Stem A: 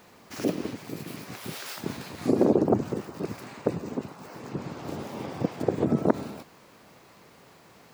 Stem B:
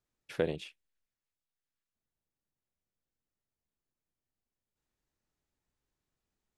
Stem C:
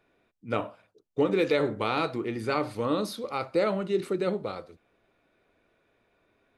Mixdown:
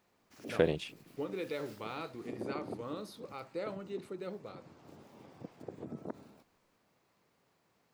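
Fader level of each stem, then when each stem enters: −20.0, +3.0, −14.0 decibels; 0.00, 0.20, 0.00 seconds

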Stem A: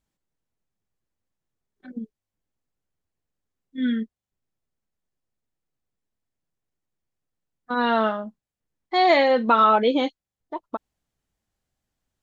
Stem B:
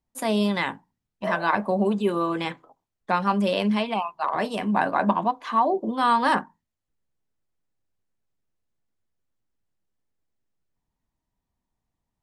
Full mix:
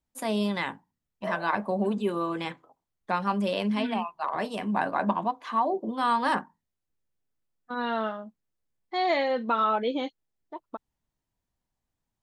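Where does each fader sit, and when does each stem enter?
−8.0, −4.5 decibels; 0.00, 0.00 seconds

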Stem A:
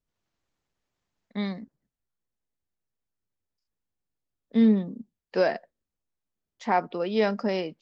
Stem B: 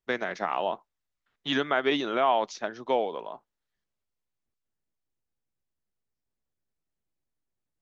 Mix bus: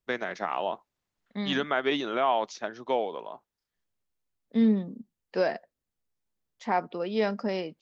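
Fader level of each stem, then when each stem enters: −3.0, −1.5 decibels; 0.00, 0.00 seconds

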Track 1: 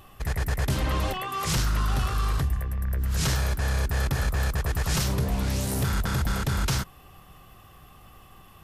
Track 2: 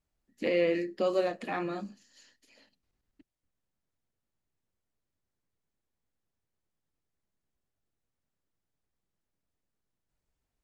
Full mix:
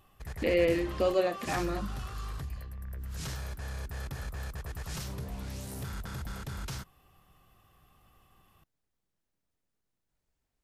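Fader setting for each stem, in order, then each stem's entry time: −13.0, +1.0 decibels; 0.00, 0.00 seconds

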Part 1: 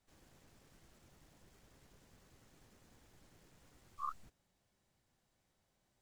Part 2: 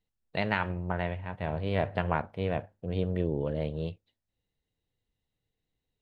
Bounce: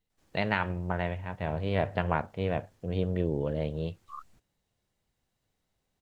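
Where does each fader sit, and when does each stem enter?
−2.5, +0.5 decibels; 0.10, 0.00 seconds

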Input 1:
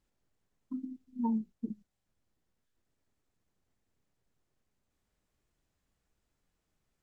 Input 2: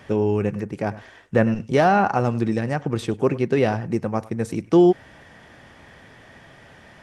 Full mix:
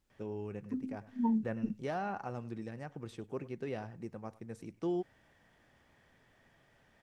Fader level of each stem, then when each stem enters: +1.0, −20.0 decibels; 0.00, 0.10 seconds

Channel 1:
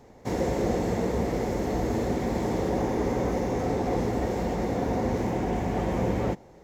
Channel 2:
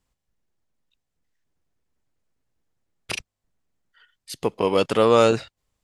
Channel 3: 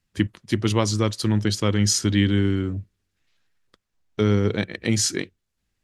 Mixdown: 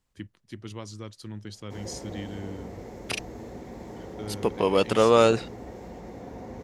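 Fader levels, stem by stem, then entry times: −13.5, −2.0, −18.0 decibels; 1.45, 0.00, 0.00 seconds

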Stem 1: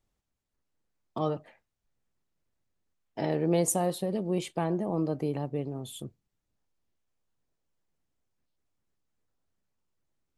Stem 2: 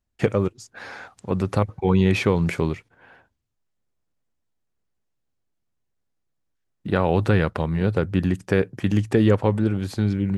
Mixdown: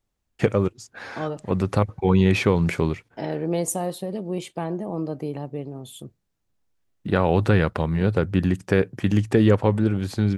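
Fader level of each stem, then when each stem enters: +1.0, +0.5 decibels; 0.00, 0.20 seconds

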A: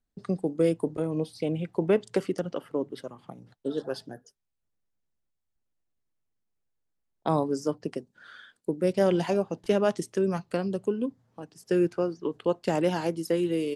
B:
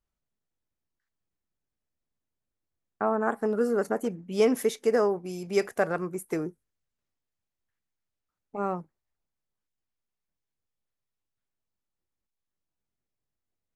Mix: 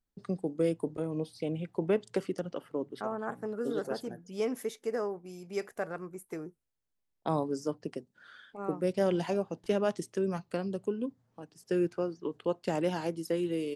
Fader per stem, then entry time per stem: −5.0, −9.5 decibels; 0.00, 0.00 seconds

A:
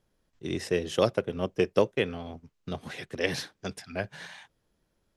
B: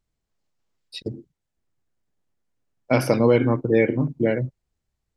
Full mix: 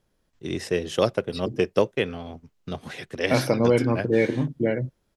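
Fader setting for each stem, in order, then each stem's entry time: +2.5, −2.5 decibels; 0.00, 0.40 seconds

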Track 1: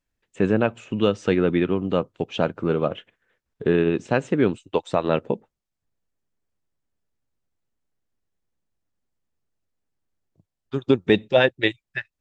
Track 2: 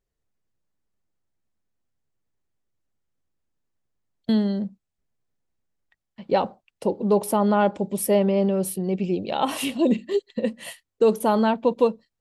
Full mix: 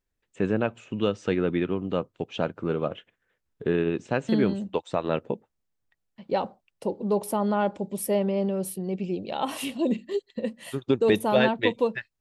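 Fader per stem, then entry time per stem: −5.0, −5.0 decibels; 0.00, 0.00 seconds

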